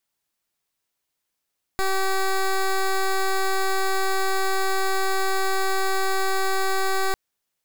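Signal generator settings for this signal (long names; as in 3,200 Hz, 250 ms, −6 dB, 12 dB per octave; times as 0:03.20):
pulse wave 384 Hz, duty 13% −21.5 dBFS 5.35 s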